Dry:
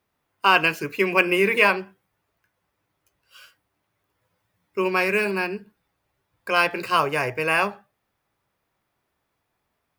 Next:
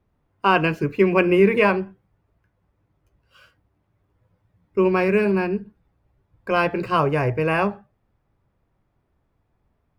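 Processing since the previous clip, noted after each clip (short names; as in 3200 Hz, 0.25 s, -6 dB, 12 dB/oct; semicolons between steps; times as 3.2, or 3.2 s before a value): tilt -4 dB/oct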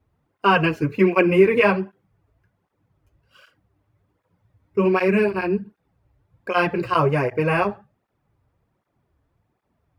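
tape flanging out of phase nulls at 1.3 Hz, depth 6 ms; gain +3.5 dB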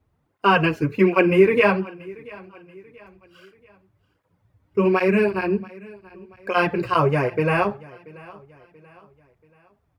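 feedback echo 0.683 s, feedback 42%, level -22 dB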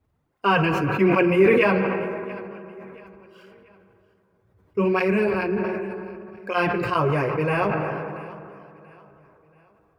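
reverb RT60 3.6 s, pre-delay 77 ms, DRR 10 dB; sustainer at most 24 dB/s; gain -3.5 dB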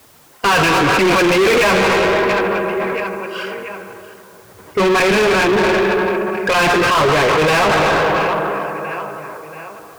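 overdrive pedal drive 36 dB, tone 4800 Hz, clips at -5.5 dBFS; requantised 8-bit, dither triangular; gain -1.5 dB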